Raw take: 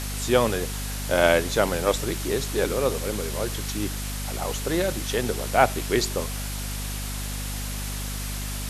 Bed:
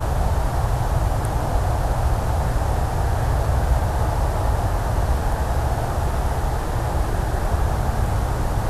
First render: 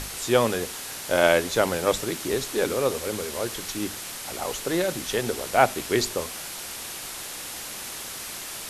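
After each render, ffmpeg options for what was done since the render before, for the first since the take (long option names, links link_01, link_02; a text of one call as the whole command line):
ffmpeg -i in.wav -af "bandreject=frequency=50:width_type=h:width=6,bandreject=frequency=100:width_type=h:width=6,bandreject=frequency=150:width_type=h:width=6,bandreject=frequency=200:width_type=h:width=6,bandreject=frequency=250:width_type=h:width=6" out.wav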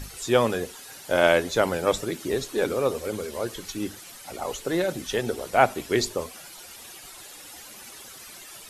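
ffmpeg -i in.wav -af "afftdn=noise_reduction=12:noise_floor=-36" out.wav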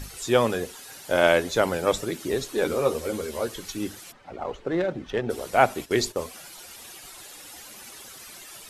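ffmpeg -i in.wav -filter_complex "[0:a]asettb=1/sr,asplit=3[link_01][link_02][link_03];[link_01]atrim=end=2.644[link_04];[link_02]atrim=start=2.64:end=3.48,asetpts=PTS-STARTPTS,afade=type=in:duration=0.004:curve=qsin,afade=type=out:start_time=0.836:duration=0.004:curve=qsin,asplit=2[link_05][link_06];[link_06]adelay=13,volume=-5.5dB[link_07];[link_05][link_07]amix=inputs=2:normalize=0,atrim=end_sample=37044[link_08];[link_03]atrim=start=3.476[link_09];[link_04][link_08]acrossfade=duration=0.004:curve1=hsin:curve2=qsin[link_10];[link_10][link_09]acrossfade=duration=0.004:curve1=qsin:curve2=hsin,asplit=3[link_11][link_12][link_13];[link_11]afade=type=out:start_time=4.11:duration=0.02[link_14];[link_12]adynamicsmooth=sensitivity=1:basefreq=1800,afade=type=in:start_time=4.11:duration=0.02,afade=type=out:start_time=5.29:duration=0.02[link_15];[link_13]afade=type=in:start_time=5.29:duration=0.02[link_16];[link_14][link_15][link_16]amix=inputs=3:normalize=0,asplit=3[link_17][link_18][link_19];[link_17]afade=type=out:start_time=5.84:duration=0.02[link_20];[link_18]agate=range=-11dB:threshold=-39dB:ratio=16:release=100:detection=peak,afade=type=in:start_time=5.84:duration=0.02,afade=type=out:start_time=6.25:duration=0.02[link_21];[link_19]afade=type=in:start_time=6.25:duration=0.02[link_22];[link_20][link_21][link_22]amix=inputs=3:normalize=0" out.wav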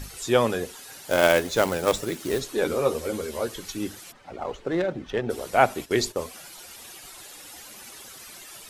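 ffmpeg -i in.wav -filter_complex "[0:a]asettb=1/sr,asplit=3[link_01][link_02][link_03];[link_01]atrim=end=1.074[link_04];[link_02]atrim=start=1.07:end=2.4,asetpts=PTS-STARTPTS,afade=type=in:duration=0.004:curve=qsin,afade=type=out:start_time=1.326:duration=0.004:curve=qsin,acrusher=bits=3:mode=log:mix=0:aa=0.000001[link_05];[link_03]atrim=start=2.396[link_06];[link_04][link_05]acrossfade=duration=0.004:curve1=hsin:curve2=qsin[link_07];[link_07][link_06]acrossfade=duration=0.004:curve1=qsin:curve2=hsin,asettb=1/sr,asplit=3[link_08][link_09][link_10];[link_08]atrim=end=4.154[link_11];[link_09]atrim=start=4.15:end=4.82,asetpts=PTS-STARTPTS,afade=type=in:duration=0.004:curve=qsin,afade=type=out:start_time=0.666:duration=0.004:curve=qsin,highshelf=frequency=4700:gain=6[link_12];[link_10]atrim=start=4.816[link_13];[link_11][link_12]acrossfade=duration=0.004:curve1=hsin:curve2=qsin[link_14];[link_14][link_13]acrossfade=duration=0.004:curve1=qsin:curve2=hsin" out.wav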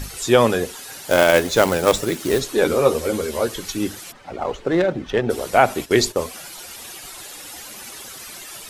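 ffmpeg -i in.wav -af "alimiter=level_in=7dB:limit=-1dB:release=50:level=0:latency=1" out.wav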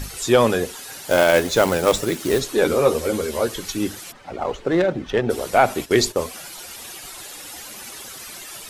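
ffmpeg -i in.wav -af "asoftclip=type=tanh:threshold=-2.5dB" out.wav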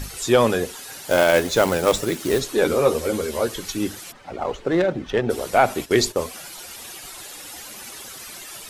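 ffmpeg -i in.wav -af "volume=-1dB" out.wav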